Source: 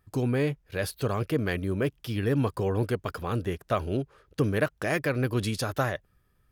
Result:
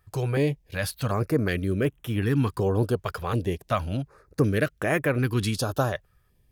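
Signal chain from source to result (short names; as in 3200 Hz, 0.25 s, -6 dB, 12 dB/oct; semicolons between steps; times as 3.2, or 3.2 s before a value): stepped notch 2.7 Hz 260–4700 Hz; gain +3.5 dB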